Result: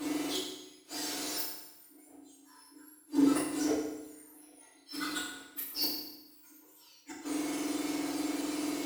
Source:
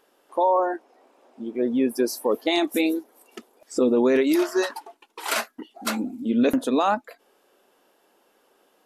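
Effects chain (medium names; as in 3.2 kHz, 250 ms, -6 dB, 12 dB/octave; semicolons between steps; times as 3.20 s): spectrum inverted on a logarithmic axis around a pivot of 1.9 kHz; 4.79–5.31 s: high-order bell 610 Hz -9.5 dB; power-law waveshaper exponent 0.5; inverted gate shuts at -23 dBFS, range -39 dB; FDN reverb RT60 0.95 s, low-frequency decay 1.25×, high-frequency decay 0.9×, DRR -8 dB; trim -7.5 dB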